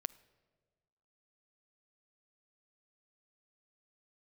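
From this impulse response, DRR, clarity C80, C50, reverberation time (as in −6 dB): 16.5 dB, 22.0 dB, 20.0 dB, 1.5 s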